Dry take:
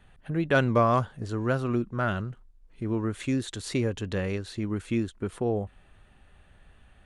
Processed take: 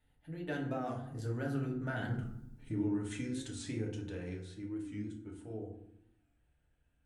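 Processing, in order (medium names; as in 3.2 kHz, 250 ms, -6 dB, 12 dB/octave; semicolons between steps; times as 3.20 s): Doppler pass-by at 2.23 s, 20 m/s, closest 1.6 m; treble shelf 9.4 kHz +11.5 dB; compression 12:1, threshold -47 dBFS, peak gain reduction 13 dB; peaking EQ 1.1 kHz -10 dB 0.27 oct; FDN reverb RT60 0.73 s, low-frequency decay 1.6×, high-frequency decay 0.5×, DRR -2 dB; warped record 45 rpm, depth 100 cents; trim +9.5 dB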